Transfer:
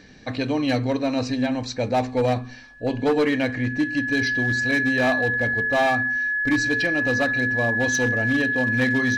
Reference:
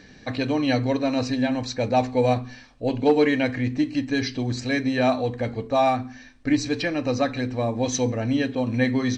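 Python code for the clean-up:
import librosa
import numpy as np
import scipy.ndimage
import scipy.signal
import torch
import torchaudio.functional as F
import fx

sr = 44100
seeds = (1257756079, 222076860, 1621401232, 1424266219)

y = fx.fix_declip(x, sr, threshold_db=-15.0)
y = fx.notch(y, sr, hz=1700.0, q=30.0)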